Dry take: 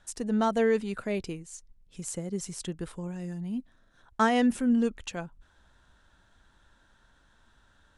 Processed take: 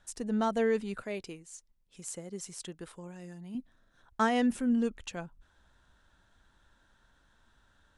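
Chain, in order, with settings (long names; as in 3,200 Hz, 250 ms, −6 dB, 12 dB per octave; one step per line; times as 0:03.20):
0:01.02–0:03.55: low-shelf EQ 220 Hz −11.5 dB
level −3.5 dB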